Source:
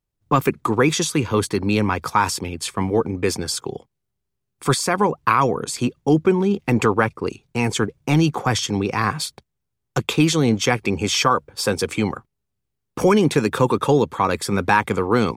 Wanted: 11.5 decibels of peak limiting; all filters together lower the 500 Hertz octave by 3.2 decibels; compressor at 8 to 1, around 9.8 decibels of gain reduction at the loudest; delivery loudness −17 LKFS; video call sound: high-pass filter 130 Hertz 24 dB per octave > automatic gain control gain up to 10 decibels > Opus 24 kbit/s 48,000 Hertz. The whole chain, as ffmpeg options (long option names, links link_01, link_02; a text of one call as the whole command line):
ffmpeg -i in.wav -af "equalizer=frequency=500:width_type=o:gain=-4,acompressor=threshold=-23dB:ratio=8,alimiter=limit=-21dB:level=0:latency=1,highpass=frequency=130:width=0.5412,highpass=frequency=130:width=1.3066,dynaudnorm=maxgain=10dB,volume=15.5dB" -ar 48000 -c:a libopus -b:a 24k out.opus